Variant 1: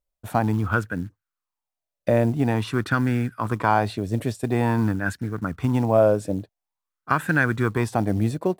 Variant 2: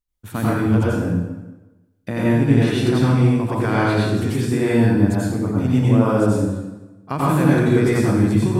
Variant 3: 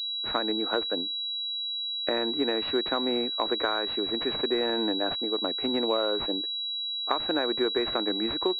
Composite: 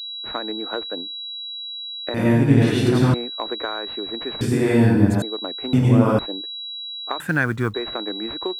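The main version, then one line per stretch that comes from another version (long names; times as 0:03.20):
3
0:02.14–0:03.14: punch in from 2
0:04.41–0:05.22: punch in from 2
0:05.73–0:06.19: punch in from 2
0:07.20–0:07.74: punch in from 1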